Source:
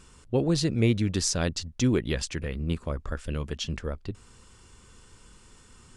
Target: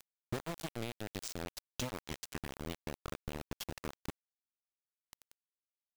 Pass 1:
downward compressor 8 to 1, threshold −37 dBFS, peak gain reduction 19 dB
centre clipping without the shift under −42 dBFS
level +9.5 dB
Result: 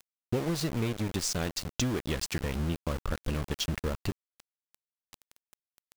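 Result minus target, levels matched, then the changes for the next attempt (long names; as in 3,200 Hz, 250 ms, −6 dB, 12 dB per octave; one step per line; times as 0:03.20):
downward compressor: peak gain reduction −8 dB
change: downward compressor 8 to 1, threshold −46 dBFS, peak gain reduction 27 dB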